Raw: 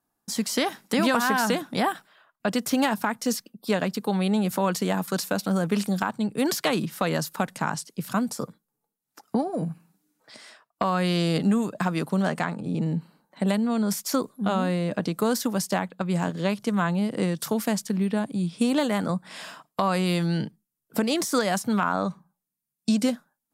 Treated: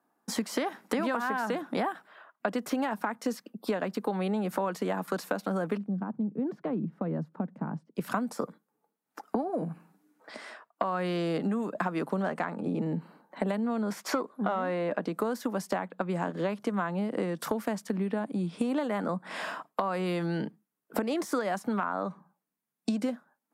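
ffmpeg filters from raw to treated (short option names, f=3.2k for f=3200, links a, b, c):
-filter_complex "[0:a]asplit=3[a][b][c];[a]afade=t=out:st=5.76:d=0.02[d];[b]bandpass=f=160:t=q:w=1.6,afade=t=in:st=5.76:d=0.02,afade=t=out:st=7.95:d=0.02[e];[c]afade=t=in:st=7.95:d=0.02[f];[d][e][f]amix=inputs=3:normalize=0,asettb=1/sr,asplit=3[g][h][i];[g]atrim=end=13.904[j];[h]atrim=start=13.9:end=14.99,asetpts=PTS-STARTPTS,afade=t=in:d=0.004:c=qsin,afade=t=out:st=1.086:d=0.004:c=qsin,asplit=2[k][l];[l]highpass=f=720:p=1,volume=12dB,asoftclip=type=tanh:threshold=-11dB[m];[k][m]amix=inputs=2:normalize=0,lowpass=f=2.4k:p=1,volume=-6dB[n];[i]atrim=start=14.986[o];[j][n]acrossfade=d=0.004:c1=hsin:c2=qsin[p];[p][o]acrossfade=d=0.004:c1=qsin:c2=hsin,highpass=150,acrossover=split=190 2200:gain=0.2 1 0.224[q][r][s];[q][r][s]amix=inputs=3:normalize=0,acompressor=threshold=-35dB:ratio=6,volume=7.5dB"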